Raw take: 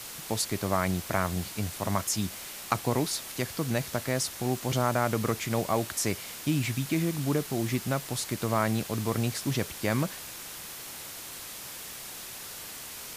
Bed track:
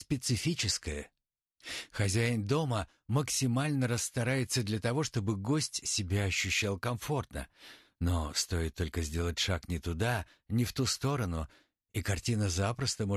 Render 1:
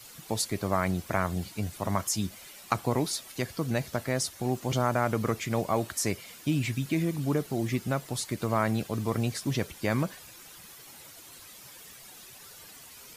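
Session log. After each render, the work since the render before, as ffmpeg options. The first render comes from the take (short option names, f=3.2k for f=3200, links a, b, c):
-af "afftdn=nr=11:nf=-42"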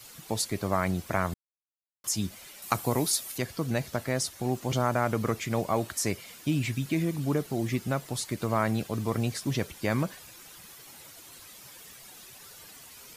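-filter_complex "[0:a]asettb=1/sr,asplit=3[a][b][c];[a]atrim=end=2.624[d];[b]atrim=start=2.62:end=3.38,asetpts=PTS-STARTPTS,afade=t=in:d=0.004:c=qsin,afade=t=out:st=0.756:d=0.004:c=qsin,equalizer=f=13k:w=0.47:g=10.5[e];[c]atrim=start=3.376[f];[d][e]acrossfade=d=0.004:c1=hsin:c2=qsin[g];[g][f]acrossfade=d=0.004:c1=qsin:c2=hsin,asplit=3[h][i][j];[h]atrim=end=1.34,asetpts=PTS-STARTPTS,afade=t=out:st=1.336:d=0.004:c=hsin[k];[i]atrim=start=1.34:end=2.04,asetpts=PTS-STARTPTS,volume=0[l];[j]atrim=start=2.04,asetpts=PTS-STARTPTS,afade=t=in:d=0.004:c=hsin[m];[k][l][m]concat=n=3:v=0:a=1"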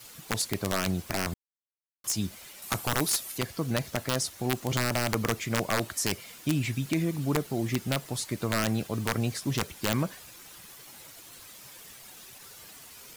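-af "acrusher=bits=7:mix=0:aa=0.5,aeval=exprs='(mod(7.08*val(0)+1,2)-1)/7.08':c=same"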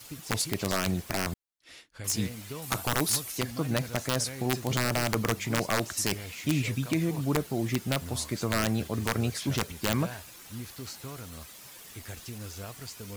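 -filter_complex "[1:a]volume=-10.5dB[a];[0:a][a]amix=inputs=2:normalize=0"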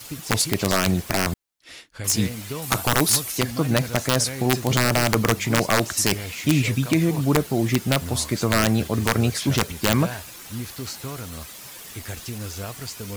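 -af "volume=8dB"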